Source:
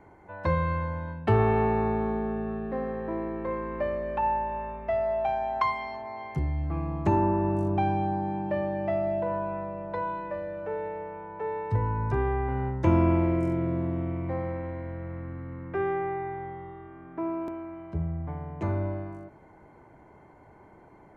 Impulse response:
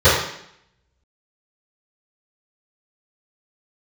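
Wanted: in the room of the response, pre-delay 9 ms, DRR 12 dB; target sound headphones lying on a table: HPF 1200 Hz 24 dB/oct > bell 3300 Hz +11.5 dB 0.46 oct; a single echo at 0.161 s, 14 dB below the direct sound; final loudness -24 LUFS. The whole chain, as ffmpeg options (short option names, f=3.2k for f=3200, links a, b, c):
-filter_complex "[0:a]aecho=1:1:161:0.2,asplit=2[a][b];[1:a]atrim=start_sample=2205,adelay=9[c];[b][c]afir=irnorm=-1:irlink=0,volume=-38.5dB[d];[a][d]amix=inputs=2:normalize=0,highpass=f=1.2k:w=0.5412,highpass=f=1.2k:w=1.3066,equalizer=f=3.3k:t=o:w=0.46:g=11.5,volume=17dB"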